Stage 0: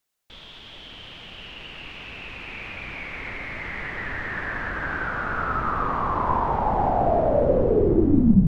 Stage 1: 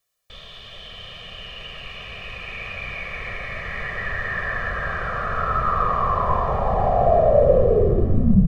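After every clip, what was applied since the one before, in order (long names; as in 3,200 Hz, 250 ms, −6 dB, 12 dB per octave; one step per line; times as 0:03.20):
comb filter 1.7 ms, depth 96%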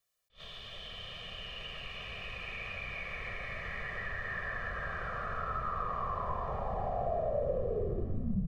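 downward compressor 2 to 1, threshold −33 dBFS, peak gain reduction 12.5 dB
level that may rise only so fast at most 280 dB per second
level −6 dB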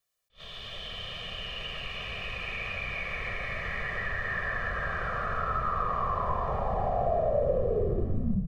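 automatic gain control gain up to 6 dB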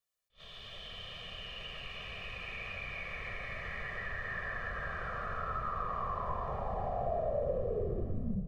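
feedback echo with a low-pass in the loop 199 ms, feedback 69%, low-pass 1,600 Hz, level −18 dB
level −7 dB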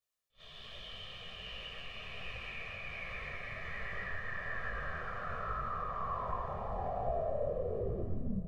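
on a send at −16.5 dB: convolution reverb RT60 3.9 s, pre-delay 85 ms
on the sum: micro pitch shift up and down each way 44 cents
level +2 dB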